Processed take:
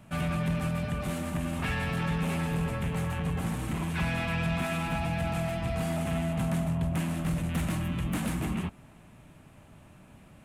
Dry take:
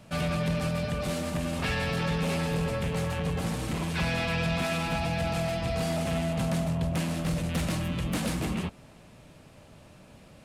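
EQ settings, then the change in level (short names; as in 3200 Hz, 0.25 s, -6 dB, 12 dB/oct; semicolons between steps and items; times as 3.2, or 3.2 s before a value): bell 510 Hz -8 dB 0.6 oct; bell 4800 Hz -11 dB 1 oct; 0.0 dB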